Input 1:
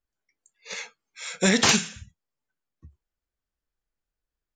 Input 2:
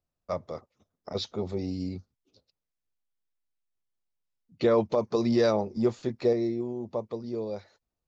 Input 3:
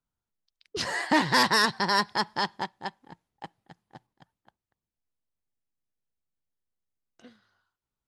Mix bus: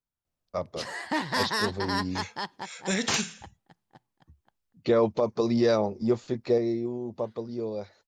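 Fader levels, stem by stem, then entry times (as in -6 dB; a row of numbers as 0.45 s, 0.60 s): -7.5 dB, +0.5 dB, -6.0 dB; 1.45 s, 0.25 s, 0.00 s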